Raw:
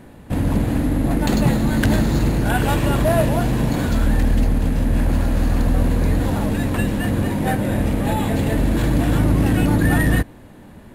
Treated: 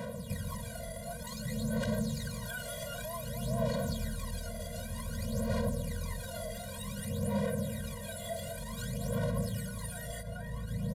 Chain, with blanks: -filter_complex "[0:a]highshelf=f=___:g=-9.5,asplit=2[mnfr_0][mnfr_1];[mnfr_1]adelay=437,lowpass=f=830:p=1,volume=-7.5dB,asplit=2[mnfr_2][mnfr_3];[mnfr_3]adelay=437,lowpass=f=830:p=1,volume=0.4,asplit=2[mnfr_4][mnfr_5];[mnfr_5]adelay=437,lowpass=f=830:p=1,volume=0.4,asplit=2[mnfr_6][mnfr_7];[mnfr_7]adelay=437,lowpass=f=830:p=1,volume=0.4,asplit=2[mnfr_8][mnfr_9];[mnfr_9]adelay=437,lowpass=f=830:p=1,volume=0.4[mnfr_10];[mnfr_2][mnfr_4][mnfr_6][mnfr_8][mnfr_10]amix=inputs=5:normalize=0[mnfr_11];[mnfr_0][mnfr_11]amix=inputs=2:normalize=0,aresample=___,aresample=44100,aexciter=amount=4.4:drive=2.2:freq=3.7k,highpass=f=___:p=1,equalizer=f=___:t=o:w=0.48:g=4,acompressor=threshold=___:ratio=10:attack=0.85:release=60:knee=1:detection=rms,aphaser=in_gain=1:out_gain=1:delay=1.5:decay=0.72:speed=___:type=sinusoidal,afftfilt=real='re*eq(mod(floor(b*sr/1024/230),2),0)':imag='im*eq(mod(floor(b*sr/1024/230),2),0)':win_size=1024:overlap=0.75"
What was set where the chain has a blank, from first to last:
11k, 32000, 310, 470, -34dB, 0.54